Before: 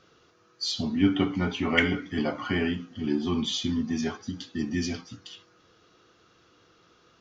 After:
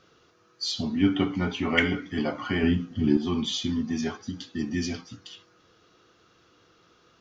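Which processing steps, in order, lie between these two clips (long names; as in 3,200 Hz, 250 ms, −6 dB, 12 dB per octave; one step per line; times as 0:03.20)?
0:02.63–0:03.17: low-shelf EQ 260 Hz +11.5 dB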